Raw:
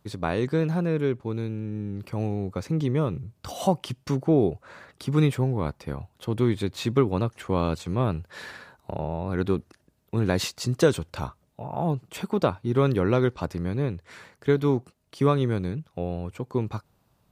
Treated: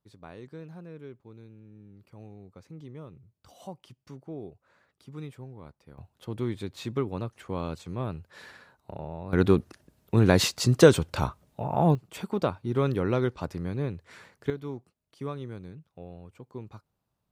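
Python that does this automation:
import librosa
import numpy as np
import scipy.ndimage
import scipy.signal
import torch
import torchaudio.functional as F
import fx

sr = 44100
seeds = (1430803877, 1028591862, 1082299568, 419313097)

y = fx.gain(x, sr, db=fx.steps((0.0, -19.0), (5.98, -8.0), (9.33, 4.0), (11.95, -4.0), (14.5, -14.0)))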